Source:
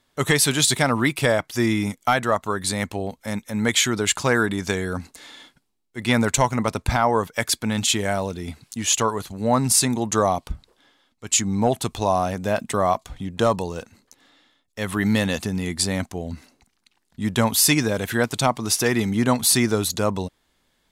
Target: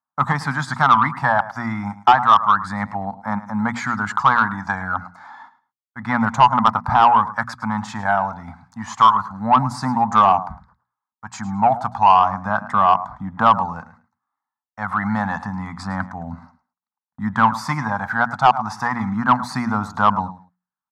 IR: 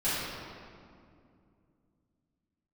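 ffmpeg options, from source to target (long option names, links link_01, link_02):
-filter_complex "[0:a]agate=range=-30dB:threshold=-48dB:ratio=16:detection=peak,highpass=120,equalizer=frequency=9300:width_type=o:width=2.7:gain=-8,aphaser=in_gain=1:out_gain=1:delay=1.5:decay=0.35:speed=0.3:type=triangular,firequalizer=gain_entry='entry(240,0);entry(370,-23);entry(810,14);entry(1200,15);entry(2800,-18);entry(4800,-7);entry(11000,-23)':delay=0.05:min_phase=1,asplit=2[link_01][link_02];[link_02]aecho=0:1:107|214:0.158|0.0317[link_03];[link_01][link_03]amix=inputs=2:normalize=0,asoftclip=type=tanh:threshold=-3.5dB,bandreject=frequency=60:width_type=h:width=6,bandreject=frequency=120:width_type=h:width=6,bandreject=frequency=180:width_type=h:width=6,bandreject=frequency=240:width_type=h:width=6"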